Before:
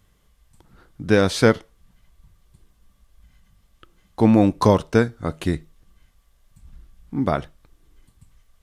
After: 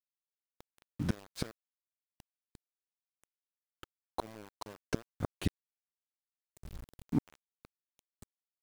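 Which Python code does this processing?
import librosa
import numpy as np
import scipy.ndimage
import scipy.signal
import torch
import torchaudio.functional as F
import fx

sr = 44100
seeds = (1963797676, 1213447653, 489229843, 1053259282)

y = fx.gate_flip(x, sr, shuts_db=-15.0, range_db=-32)
y = np.where(np.abs(y) >= 10.0 ** (-42.0 / 20.0), y, 0.0)
y = y * librosa.db_to_amplitude(-1.5)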